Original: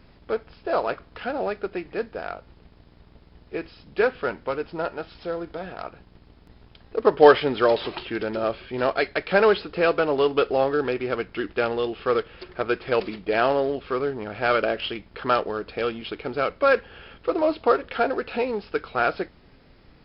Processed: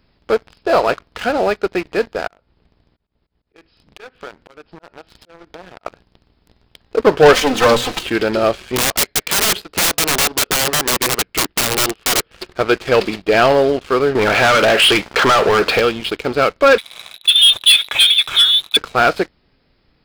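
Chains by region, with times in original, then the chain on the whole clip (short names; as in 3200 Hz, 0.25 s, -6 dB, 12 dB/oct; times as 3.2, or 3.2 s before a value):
2.27–5.86 high shelf 3900 Hz -5.5 dB + auto swell 0.321 s + compressor 3:1, threshold -40 dBFS
7.33–8.03 minimum comb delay 3.9 ms + notches 60/120/180/240/300/360/420/480/540 Hz
8.76–12.31 transient shaper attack +4 dB, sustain -7 dB + compressor 5:1, threshold -20 dBFS + wrapped overs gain 23.5 dB
14.15–15.8 compressor, threshold -24 dBFS + overdrive pedal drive 24 dB, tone 3300 Hz, clips at -15 dBFS
16.78–18.77 inverted band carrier 3900 Hz + hard clip -17 dBFS
whole clip: high shelf 3900 Hz +9 dB; sample leveller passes 3; gain -1 dB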